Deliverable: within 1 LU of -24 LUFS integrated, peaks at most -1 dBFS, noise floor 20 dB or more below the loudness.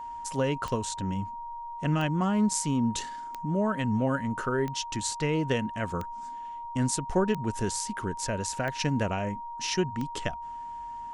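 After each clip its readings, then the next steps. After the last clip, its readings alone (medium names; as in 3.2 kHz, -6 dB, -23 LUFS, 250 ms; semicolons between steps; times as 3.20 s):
clicks found 8; steady tone 940 Hz; tone level -36 dBFS; loudness -30.0 LUFS; peak level -12.0 dBFS; loudness target -24.0 LUFS
-> de-click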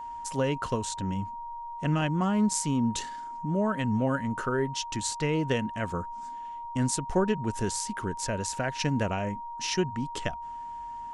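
clicks found 0; steady tone 940 Hz; tone level -36 dBFS
-> band-stop 940 Hz, Q 30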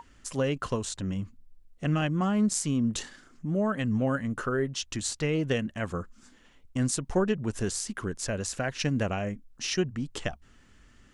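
steady tone not found; loudness -30.0 LUFS; peak level -11.5 dBFS; loudness target -24.0 LUFS
-> trim +6 dB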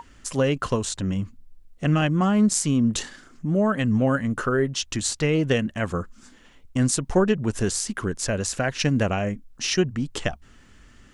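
loudness -24.0 LUFS; peak level -5.5 dBFS; noise floor -53 dBFS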